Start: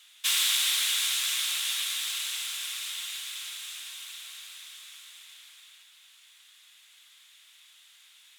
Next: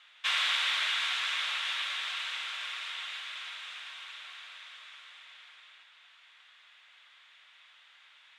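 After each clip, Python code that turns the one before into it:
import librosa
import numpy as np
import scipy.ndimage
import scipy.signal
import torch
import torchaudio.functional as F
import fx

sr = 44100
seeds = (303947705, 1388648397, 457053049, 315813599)

y = scipy.signal.sosfilt(scipy.signal.butter(2, 1900.0, 'lowpass', fs=sr, output='sos'), x)
y = y * librosa.db_to_amplitude(7.5)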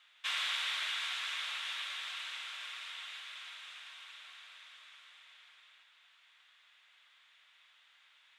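y = fx.high_shelf(x, sr, hz=9400.0, db=9.0)
y = y * librosa.db_to_amplitude(-7.0)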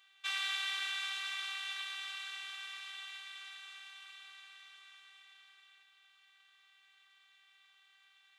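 y = fx.robotise(x, sr, hz=389.0)
y = y * librosa.db_to_amplitude(1.0)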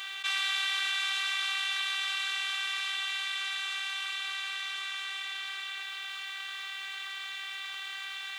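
y = fx.env_flatten(x, sr, amount_pct=70)
y = y * librosa.db_to_amplitude(5.0)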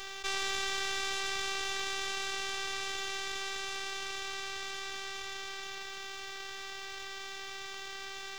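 y = np.maximum(x, 0.0)
y = y * librosa.db_to_amplitude(-1.5)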